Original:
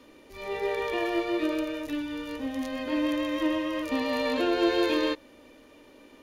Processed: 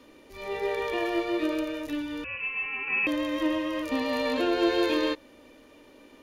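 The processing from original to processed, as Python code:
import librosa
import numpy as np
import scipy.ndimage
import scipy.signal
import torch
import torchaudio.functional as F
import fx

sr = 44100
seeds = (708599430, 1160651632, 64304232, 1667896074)

y = fx.freq_invert(x, sr, carrier_hz=2900, at=(2.24, 3.07))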